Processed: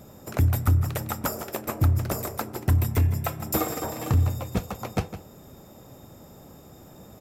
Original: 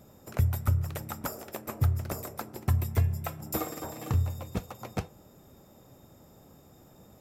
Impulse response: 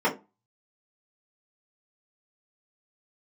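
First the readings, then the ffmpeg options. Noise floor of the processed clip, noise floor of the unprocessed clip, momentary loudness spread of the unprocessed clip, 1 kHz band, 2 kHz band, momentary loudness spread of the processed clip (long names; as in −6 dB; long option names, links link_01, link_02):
−49 dBFS, −57 dBFS, 11 LU, +6.5 dB, +6.5 dB, 9 LU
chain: -filter_complex "[0:a]aeval=exprs='0.211*sin(PI/2*1.78*val(0)/0.211)':channel_layout=same,asplit=2[link_01][link_02];[link_02]adelay=157.4,volume=-12dB,highshelf=frequency=4000:gain=-3.54[link_03];[link_01][link_03]amix=inputs=2:normalize=0,volume=-1.5dB"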